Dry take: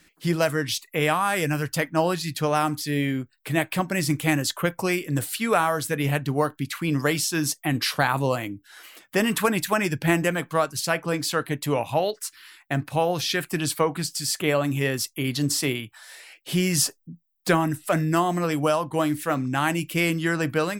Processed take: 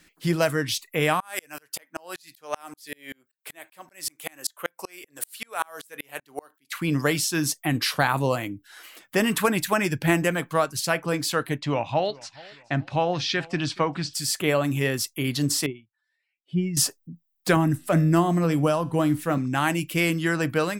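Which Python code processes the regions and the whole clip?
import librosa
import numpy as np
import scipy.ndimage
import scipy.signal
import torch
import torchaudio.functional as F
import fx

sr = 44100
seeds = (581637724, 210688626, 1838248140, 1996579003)

y = fx.chain(x, sr, fx.highpass(hz=500.0, slope=12),
    fx.high_shelf(hz=6100.0, db=7.5),
    fx.tremolo_decay(direction='swelling', hz=5.2, depth_db=37), at=(1.2, 6.72))
y = fx.chain(y, sr, fx.lowpass(hz=5600.0, slope=24),
    fx.peak_eq(hz=450.0, db=-6.5, octaves=0.25),
    fx.echo_feedback(ms=425, feedback_pct=37, wet_db=-23), at=(11.58, 14.14))
y = fx.chain(y, sr, fx.spec_expand(power=1.8),
    fx.lowpass(hz=5800.0, slope=12),
    fx.upward_expand(threshold_db=-41.0, expansion=2.5), at=(15.66, 16.77))
y = fx.chain(y, sr, fx.low_shelf(hz=380.0, db=10.0),
    fx.comb_fb(f0_hz=84.0, decay_s=0.51, harmonics='all', damping=0.0, mix_pct=40), at=(17.56, 19.38))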